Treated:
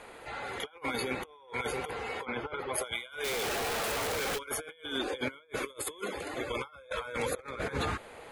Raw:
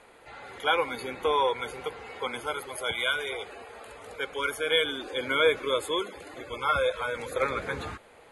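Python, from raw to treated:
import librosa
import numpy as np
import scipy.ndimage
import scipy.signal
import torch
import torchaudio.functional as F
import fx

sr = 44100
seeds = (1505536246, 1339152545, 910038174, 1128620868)

y = fx.clip_1bit(x, sr, at=(3.24, 4.39))
y = fx.high_shelf(y, sr, hz=fx.line((5.54, 5200.0), (6.03, 9100.0)), db=12.0, at=(5.54, 6.03), fade=0.02)
y = fx.over_compress(y, sr, threshold_db=-36.0, ratio=-0.5)
y = fx.air_absorb(y, sr, metres=310.0, at=(2.24, 2.73), fade=0.02)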